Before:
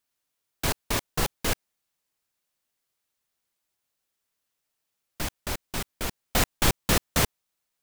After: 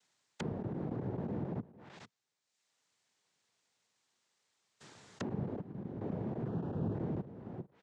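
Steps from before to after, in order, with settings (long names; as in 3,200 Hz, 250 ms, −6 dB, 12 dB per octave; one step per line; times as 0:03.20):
spectrum averaged block by block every 400 ms
reverb reduction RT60 1.1 s
cochlear-implant simulation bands 6
brickwall limiter −34 dBFS, peak gain reduction 10.5 dB
0:06.48–0:06.95: Butterworth band-reject 2,100 Hz, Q 2.8
single-tap delay 450 ms −20 dB
treble cut that deepens with the level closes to 400 Hz, closed at −48.5 dBFS
level +11.5 dB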